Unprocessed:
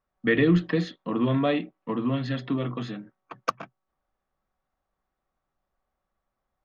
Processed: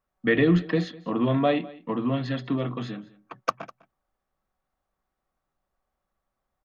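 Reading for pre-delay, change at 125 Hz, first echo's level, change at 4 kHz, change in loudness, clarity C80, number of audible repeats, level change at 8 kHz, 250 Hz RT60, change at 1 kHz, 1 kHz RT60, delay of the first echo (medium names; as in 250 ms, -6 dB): no reverb, 0.0 dB, -21.0 dB, 0.0 dB, +0.5 dB, no reverb, 1, no reading, no reverb, +2.0 dB, no reverb, 202 ms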